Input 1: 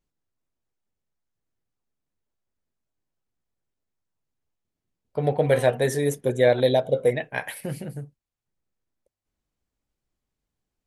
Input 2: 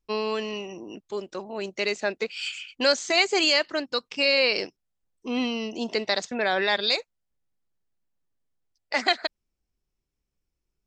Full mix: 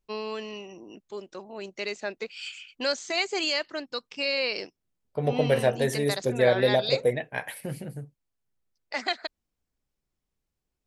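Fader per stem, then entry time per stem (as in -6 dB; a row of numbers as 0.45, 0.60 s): -3.0, -6.0 dB; 0.00, 0.00 s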